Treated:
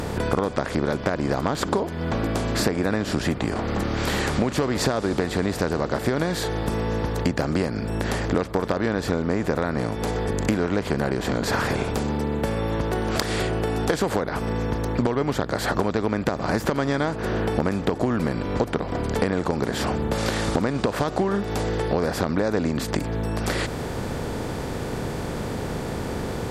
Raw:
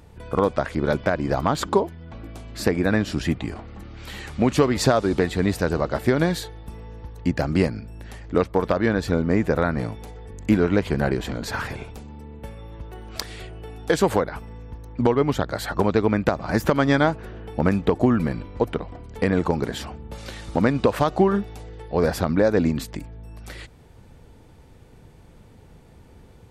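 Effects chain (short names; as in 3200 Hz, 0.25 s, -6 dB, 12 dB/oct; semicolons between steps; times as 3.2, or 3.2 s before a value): per-bin compression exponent 0.6; compressor 6:1, threshold -25 dBFS, peak gain reduction 14.5 dB; gain +5 dB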